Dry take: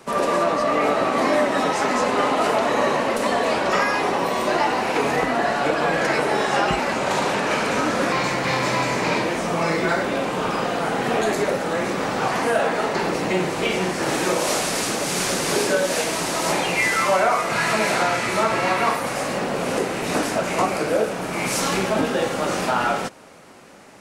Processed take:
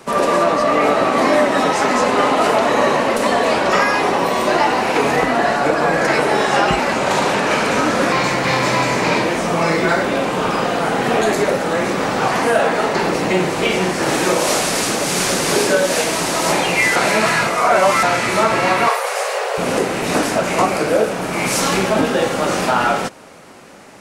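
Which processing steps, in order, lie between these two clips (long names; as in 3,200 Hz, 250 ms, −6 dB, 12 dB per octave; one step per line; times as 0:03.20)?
0:05.56–0:06.08: parametric band 3,100 Hz −6 dB 0.69 octaves
0:16.96–0:18.03: reverse
0:18.88–0:19.58: linear-phase brick-wall high-pass 390 Hz
level +5 dB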